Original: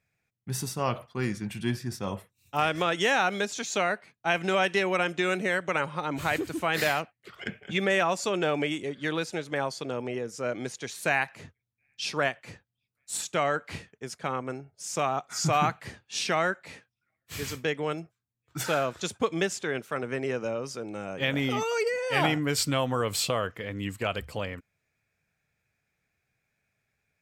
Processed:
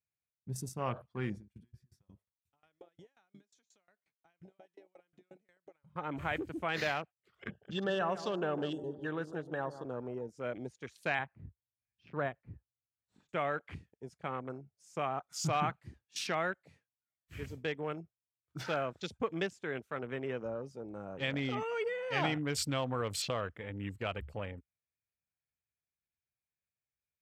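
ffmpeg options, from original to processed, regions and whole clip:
ffmpeg -i in.wav -filter_complex "[0:a]asettb=1/sr,asplit=3[link_01][link_02][link_03];[link_01]atrim=end=1.384[link_04];[link_02]atrim=start=1.38:end=5.96,asetpts=PTS-STARTPTS,afade=type=in:duration=0.004:curve=qsin,afade=type=out:start_time=4.576:duration=0.004:curve=qsin,bandreject=frequency=2700:width=19,acompressor=threshold=-39dB:ratio=4:attack=3.2:release=140:knee=1:detection=peak,aeval=exprs='val(0)*pow(10,-25*if(lt(mod(5.6*n/s,1),2*abs(5.6)/1000),1-mod(5.6*n/s,1)/(2*abs(5.6)/1000),(mod(5.6*n/s,1)-2*abs(5.6)/1000)/(1-2*abs(5.6)/1000))/20)':channel_layout=same[link_05];[link_03]atrim=start=5.956[link_06];[link_04][link_05]acrossfade=duration=0.004:curve1=hsin:curve2=qsin[link_07];[link_07][link_06]acrossfade=duration=0.004:curve1=qsin:curve2=hsin,asettb=1/sr,asplit=3[link_08][link_09][link_10];[link_08]atrim=end=7.514[link_11];[link_09]atrim=start=7.51:end=9.85,asetpts=PTS-STARTPTS,afade=type=in:duration=0.004:curve=qsin,afade=type=out:start_time=2.336:duration=0.004:curve=qsin,asuperstop=centerf=2200:order=20:qfactor=2.7,asplit=2[link_12][link_13];[link_13]adelay=151,lowpass=frequency=1300:poles=1,volume=-11dB,asplit=2[link_14][link_15];[link_15]adelay=151,lowpass=frequency=1300:poles=1,volume=0.54,asplit=2[link_16][link_17];[link_17]adelay=151,lowpass=frequency=1300:poles=1,volume=0.54,asplit=2[link_18][link_19];[link_19]adelay=151,lowpass=frequency=1300:poles=1,volume=0.54,asplit=2[link_20][link_21];[link_21]adelay=151,lowpass=frequency=1300:poles=1,volume=0.54,asplit=2[link_22][link_23];[link_23]adelay=151,lowpass=frequency=1300:poles=1,volume=0.54[link_24];[link_12][link_14][link_16][link_18][link_20][link_22][link_24]amix=inputs=7:normalize=0,atrim=end_sample=103194[link_25];[link_10]atrim=start=9.846[link_26];[link_11][link_25]acrossfade=duration=0.004:curve1=hsin:curve2=qsin[link_27];[link_27][link_26]acrossfade=duration=0.004:curve1=qsin:curve2=hsin,asettb=1/sr,asplit=3[link_28][link_29][link_30];[link_28]atrim=end=11.194[link_31];[link_29]atrim=start=11.19:end=13.29,asetpts=PTS-STARTPTS,afade=type=in:duration=0.004:curve=qsin,afade=type=out:start_time=2.096:duration=0.004:curve=qsin,lowpass=1500,lowshelf=frequency=94:gain=11.5[link_32];[link_30]atrim=start=13.286[link_33];[link_31][link_32]acrossfade=duration=0.004:curve1=hsin:curve2=qsin[link_34];[link_34][link_33]acrossfade=duration=0.004:curve1=qsin:curve2=hsin,afwtdn=0.0112,equalizer=frequency=63:width=1.5:gain=8,volume=-7.5dB" out.wav

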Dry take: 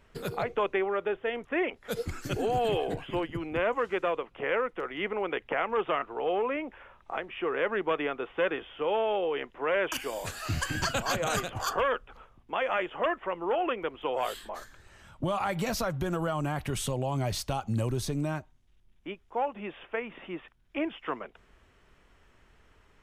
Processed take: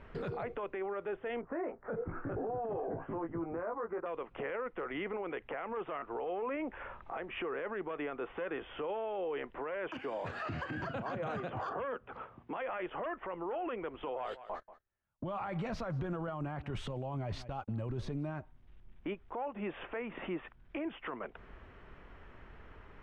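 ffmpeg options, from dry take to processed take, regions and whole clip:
ffmpeg -i in.wav -filter_complex "[0:a]asettb=1/sr,asplit=3[link_01][link_02][link_03];[link_01]atrim=end=1.414[link_04];[link_02]atrim=start=1.41:end=4.06,asetpts=PTS-STARTPTS,afade=type=in:duration=0.004:curve=qsin,afade=type=out:start_time=2.646:duration=0.004:curve=qsin,lowpass=frequency=1400:width=0.5412,lowpass=frequency=1400:width=1.3066,lowshelf=frequency=210:gain=-7,asplit=2[link_05][link_06];[link_06]adelay=18,volume=-5dB[link_07];[link_05][link_07]amix=inputs=2:normalize=0,atrim=end_sample=116865[link_08];[link_03]atrim=start=4.056[link_09];[link_04][link_08]acrossfade=duration=0.004:curve1=hsin:curve2=qsin[link_10];[link_10][link_09]acrossfade=duration=0.004:curve1=qsin:curve2=hsin,asettb=1/sr,asplit=3[link_11][link_12][link_13];[link_11]atrim=end=9.884[link_14];[link_12]atrim=start=9.88:end=12.57,asetpts=PTS-STARTPTS,afade=type=in:duration=0.004:curve=qsin,afade=type=out:start_time=2.686:duration=0.004:curve=qsin,highpass=120,highshelf=frequency=5900:gain=-9.5,acrossover=split=240|760[link_15][link_16][link_17];[link_15]acompressor=threshold=-40dB:ratio=4[link_18];[link_16]acompressor=threshold=-39dB:ratio=4[link_19];[link_17]acompressor=threshold=-41dB:ratio=4[link_20];[link_18][link_19][link_20]amix=inputs=3:normalize=0[link_21];[link_13]atrim=start=12.566[link_22];[link_14][link_21]acrossfade=duration=0.004:curve1=hsin:curve2=qsin[link_23];[link_23][link_22]acrossfade=duration=0.004:curve1=qsin:curve2=hsin,asettb=1/sr,asplit=3[link_24][link_25][link_26];[link_24]atrim=end=14.084[link_27];[link_25]atrim=start=14.08:end=18.31,asetpts=PTS-STARTPTS,afade=type=in:duration=0.004:curve=qsin,afade=type=out:start_time=4.226:duration=0.004:curve=qsin,agate=range=-43dB:threshold=-40dB:ratio=16:release=100:detection=peak,aecho=1:1:185:0.0668,atrim=end_sample=186543[link_28];[link_26]atrim=start=18.306[link_29];[link_27][link_28]acrossfade=duration=0.004:curve1=hsin:curve2=qsin[link_30];[link_30][link_29]acrossfade=duration=0.004:curve1=qsin:curve2=hsin,lowpass=2100,acompressor=threshold=-44dB:ratio=2.5,alimiter=level_in=14.5dB:limit=-24dB:level=0:latency=1:release=11,volume=-14.5dB,volume=8dB" out.wav

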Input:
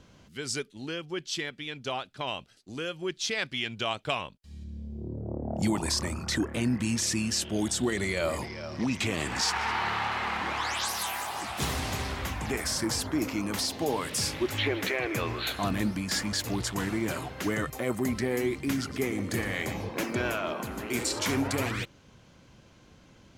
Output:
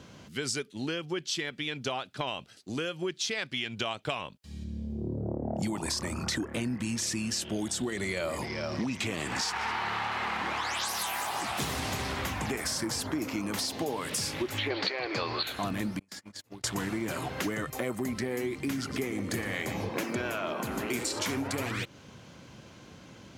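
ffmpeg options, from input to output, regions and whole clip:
ffmpeg -i in.wav -filter_complex "[0:a]asettb=1/sr,asplit=3[link_01][link_02][link_03];[link_01]atrim=end=14.704[link_04];[link_02]atrim=start=14.7:end=15.43,asetpts=PTS-STARTPTS,afade=type=in:duration=0.004:curve=qsin,afade=type=out:start_time=0.726:duration=0.004:curve=qsin,lowpass=frequency=4500:width_type=q:width=13,equalizer=frequency=790:width=0.78:gain=9,bandreject=frequency=670:width=15[link_05];[link_03]atrim=start=15.426[link_06];[link_04][link_05]acrossfade=duration=0.004:curve1=hsin:curve2=qsin[link_07];[link_07][link_06]acrossfade=duration=0.004:curve1=qsin:curve2=hsin,asettb=1/sr,asplit=3[link_08][link_09][link_10];[link_08]atrim=end=15.994[link_11];[link_09]atrim=start=15.99:end=16.64,asetpts=PTS-STARTPTS,afade=type=in:duration=0.004:curve=qsin,afade=type=out:start_time=0.646:duration=0.004:curve=qsin,agate=range=-39dB:threshold=-28dB:ratio=16:release=100:detection=peak,acompressor=threshold=-45dB:ratio=16:attack=3.2:release=140:knee=1:detection=peak[link_12];[link_10]atrim=start=16.636[link_13];[link_11][link_12]acrossfade=duration=0.004:curve1=hsin:curve2=qsin[link_14];[link_14][link_13]acrossfade=duration=0.004:curve1=qsin:curve2=hsin,highpass=89,acompressor=threshold=-36dB:ratio=6,volume=6.5dB" out.wav

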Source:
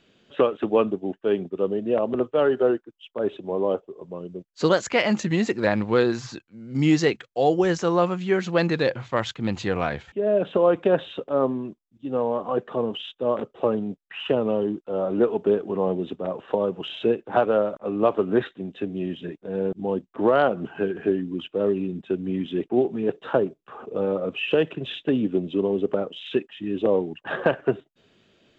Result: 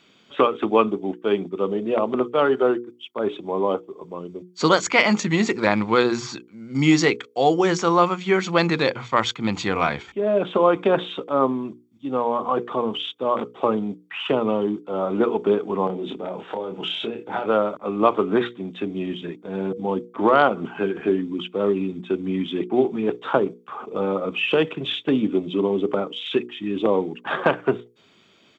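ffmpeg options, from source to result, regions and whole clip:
ffmpeg -i in.wav -filter_complex "[0:a]asettb=1/sr,asplit=3[link_01][link_02][link_03];[link_01]atrim=end=15.874[link_04];[link_02]atrim=start=15.87:end=17.46,asetpts=PTS-STARTPTS,afade=type=in:duration=0.004:curve=qsin,afade=type=out:start_time=1.586:duration=0.004:curve=qsin,equalizer=frequency=1100:width=7.6:gain=-13.5,acompressor=threshold=-28dB:ratio=3:attack=3.2:release=140:knee=1:detection=peak,asplit=2[link_05][link_06];[link_06]adelay=27,volume=-4dB[link_07];[link_05][link_07]amix=inputs=2:normalize=0,atrim=end_sample=70119[link_08];[link_03]atrim=start=17.456[link_09];[link_04][link_08]acrossfade=duration=0.004:curve1=hsin:curve2=qsin[link_10];[link_10][link_09]acrossfade=duration=0.004:curve1=qsin:curve2=hsin,highpass=frequency=320:poles=1,bandreject=frequency=60:width_type=h:width=6,bandreject=frequency=120:width_type=h:width=6,bandreject=frequency=180:width_type=h:width=6,bandreject=frequency=240:width_type=h:width=6,bandreject=frequency=300:width_type=h:width=6,bandreject=frequency=360:width_type=h:width=6,bandreject=frequency=420:width_type=h:width=6,bandreject=frequency=480:width_type=h:width=6,aecho=1:1:0.9:0.42,volume=6dB" out.wav

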